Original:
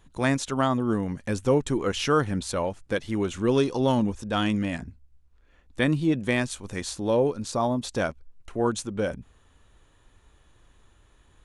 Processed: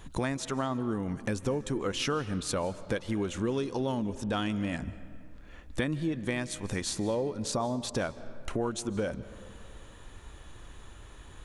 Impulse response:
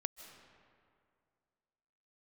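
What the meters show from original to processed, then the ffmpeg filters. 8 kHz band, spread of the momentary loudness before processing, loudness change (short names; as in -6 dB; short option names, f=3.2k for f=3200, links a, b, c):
-1.5 dB, 8 LU, -6.0 dB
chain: -filter_complex "[0:a]acompressor=threshold=-40dB:ratio=5,asplit=2[a][b];[1:a]atrim=start_sample=2205[c];[b][c]afir=irnorm=-1:irlink=0,volume=0.5dB[d];[a][d]amix=inputs=2:normalize=0,volume=4.5dB"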